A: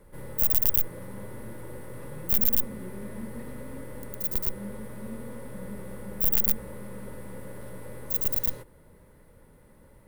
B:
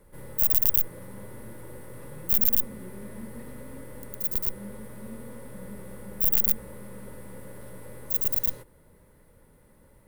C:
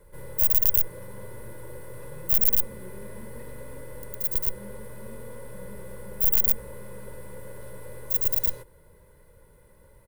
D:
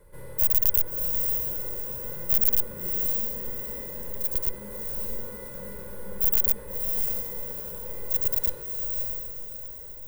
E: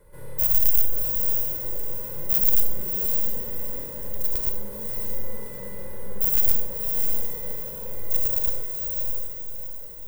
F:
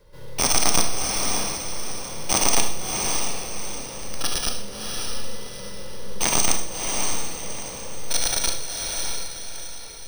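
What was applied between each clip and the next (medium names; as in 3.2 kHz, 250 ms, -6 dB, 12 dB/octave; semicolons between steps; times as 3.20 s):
treble shelf 4.9 kHz +4 dB; trim -2.5 dB
comb 2 ms, depth 55%
echo that smears into a reverb 637 ms, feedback 42%, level -4 dB; trim -1 dB
Schroeder reverb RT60 0.65 s, combs from 26 ms, DRR 3.5 dB
careless resampling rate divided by 3×, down none, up hold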